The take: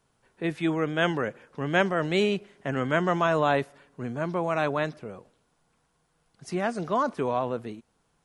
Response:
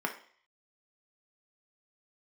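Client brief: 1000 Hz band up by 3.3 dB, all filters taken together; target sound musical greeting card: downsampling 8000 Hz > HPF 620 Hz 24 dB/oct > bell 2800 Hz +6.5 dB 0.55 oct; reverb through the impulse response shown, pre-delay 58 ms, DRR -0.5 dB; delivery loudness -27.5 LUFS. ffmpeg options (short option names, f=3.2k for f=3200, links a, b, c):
-filter_complex "[0:a]equalizer=f=1k:t=o:g=4.5,asplit=2[a][b];[1:a]atrim=start_sample=2205,adelay=58[c];[b][c]afir=irnorm=-1:irlink=0,volume=-6dB[d];[a][d]amix=inputs=2:normalize=0,aresample=8000,aresample=44100,highpass=f=620:w=0.5412,highpass=f=620:w=1.3066,equalizer=f=2.8k:t=o:w=0.55:g=6.5,volume=-3.5dB"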